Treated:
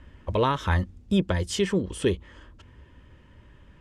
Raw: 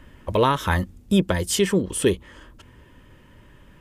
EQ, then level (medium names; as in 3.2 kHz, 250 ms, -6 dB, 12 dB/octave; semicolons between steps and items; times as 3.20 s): low-pass 6.4 kHz 12 dB/octave; peaking EQ 68 Hz +7.5 dB 1 oct; -4.5 dB